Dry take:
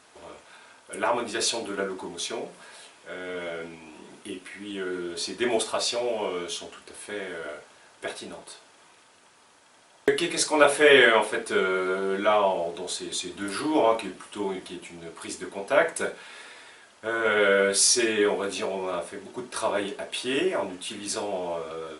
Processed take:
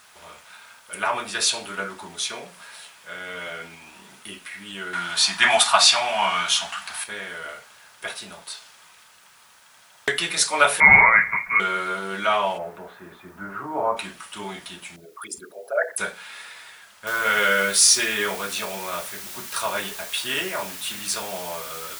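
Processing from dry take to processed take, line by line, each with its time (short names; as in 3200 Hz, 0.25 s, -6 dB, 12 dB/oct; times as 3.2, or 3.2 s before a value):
4.93–7.04 EQ curve 110 Hz 0 dB, 190 Hz +5 dB, 490 Hz -12 dB, 700 Hz +13 dB, 9900 Hz +6 dB
8.41–10.12 dynamic EQ 4700 Hz, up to +6 dB, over -58 dBFS, Q 0.77
10.8–11.6 inverted band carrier 2600 Hz
12.57–13.96 LPF 2000 Hz -> 1200 Hz 24 dB/oct
14.96–15.98 formant sharpening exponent 3
17.07 noise floor step -66 dB -42 dB
whole clip: EQ curve 200 Hz 0 dB, 290 Hz -11 dB, 1300 Hz +5 dB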